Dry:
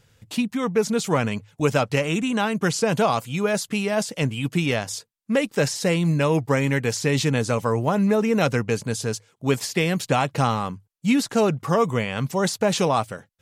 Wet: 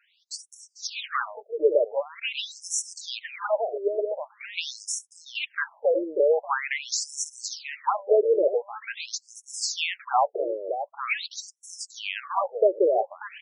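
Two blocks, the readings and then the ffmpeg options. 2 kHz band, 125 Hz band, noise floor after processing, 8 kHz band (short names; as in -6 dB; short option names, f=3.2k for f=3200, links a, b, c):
-5.0 dB, under -40 dB, -67 dBFS, -1.0 dB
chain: -af "aecho=1:1:589:0.376,afftfilt=real='re*between(b*sr/1024,430*pow(7700/430,0.5+0.5*sin(2*PI*0.45*pts/sr))/1.41,430*pow(7700/430,0.5+0.5*sin(2*PI*0.45*pts/sr))*1.41)':imag='im*between(b*sr/1024,430*pow(7700/430,0.5+0.5*sin(2*PI*0.45*pts/sr))/1.41,430*pow(7700/430,0.5+0.5*sin(2*PI*0.45*pts/sr))*1.41)':win_size=1024:overlap=0.75,volume=3dB"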